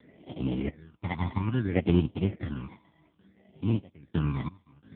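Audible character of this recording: aliases and images of a low sample rate 1300 Hz, jitter 0%; random-step tremolo 2.9 Hz, depth 95%; phasing stages 12, 0.61 Hz, lowest notch 470–1600 Hz; AMR-NB

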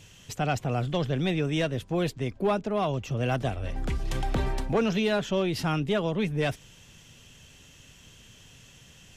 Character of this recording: noise floor -54 dBFS; spectral tilt -5.5 dB/oct

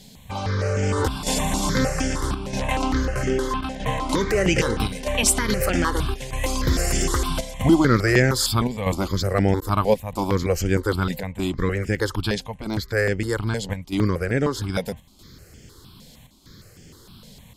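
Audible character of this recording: chopped level 0.79 Hz, depth 60%, duty 85%; notches that jump at a steady rate 6.5 Hz 330–3900 Hz

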